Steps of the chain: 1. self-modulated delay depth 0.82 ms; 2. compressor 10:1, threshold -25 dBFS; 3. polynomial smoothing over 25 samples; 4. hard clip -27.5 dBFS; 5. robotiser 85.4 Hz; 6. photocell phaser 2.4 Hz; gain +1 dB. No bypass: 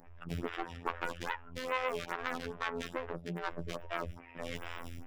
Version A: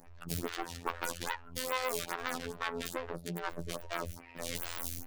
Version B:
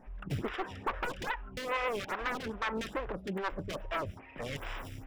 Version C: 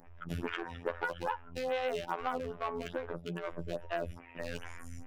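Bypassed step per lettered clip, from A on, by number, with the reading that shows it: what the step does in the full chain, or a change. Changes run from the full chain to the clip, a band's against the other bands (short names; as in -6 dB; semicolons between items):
3, 8 kHz band +14.0 dB; 5, crest factor change -9.0 dB; 1, crest factor change -2.5 dB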